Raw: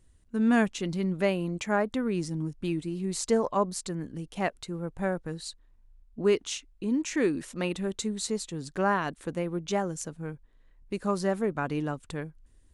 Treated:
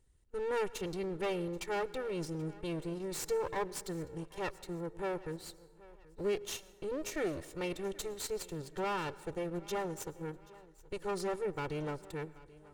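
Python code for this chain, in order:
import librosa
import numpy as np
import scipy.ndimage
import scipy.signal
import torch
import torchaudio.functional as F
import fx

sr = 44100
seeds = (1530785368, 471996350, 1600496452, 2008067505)

p1 = fx.lower_of_two(x, sr, delay_ms=2.2)
p2 = fx.level_steps(p1, sr, step_db=19)
p3 = p1 + (p2 * 10.0 ** (-1.0 / 20.0))
p4 = 10.0 ** (-17.0 / 20.0) * np.tanh(p3 / 10.0 ** (-17.0 / 20.0))
p5 = fx.echo_feedback(p4, sr, ms=781, feedback_pct=42, wet_db=-21.0)
p6 = fx.rev_plate(p5, sr, seeds[0], rt60_s=1.4, hf_ratio=0.5, predelay_ms=90, drr_db=19.0)
y = p6 * 10.0 ** (-8.5 / 20.0)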